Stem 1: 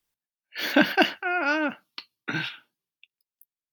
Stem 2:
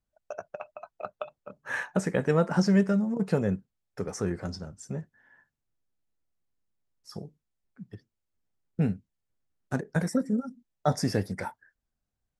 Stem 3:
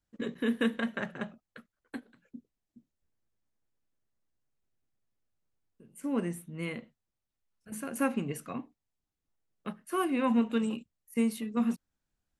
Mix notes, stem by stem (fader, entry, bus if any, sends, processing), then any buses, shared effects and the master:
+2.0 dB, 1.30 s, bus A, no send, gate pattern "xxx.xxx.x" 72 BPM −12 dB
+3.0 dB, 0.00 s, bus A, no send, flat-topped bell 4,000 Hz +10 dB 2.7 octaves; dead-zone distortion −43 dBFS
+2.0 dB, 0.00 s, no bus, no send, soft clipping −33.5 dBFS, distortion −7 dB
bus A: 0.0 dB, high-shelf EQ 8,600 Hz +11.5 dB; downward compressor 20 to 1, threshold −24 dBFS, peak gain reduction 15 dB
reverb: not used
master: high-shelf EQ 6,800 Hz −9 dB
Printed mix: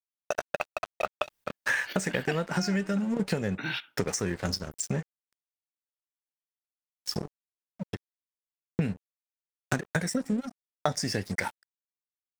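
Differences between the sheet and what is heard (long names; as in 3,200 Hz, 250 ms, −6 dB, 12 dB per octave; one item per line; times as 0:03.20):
stem 2 +3.0 dB → +13.0 dB
stem 3: muted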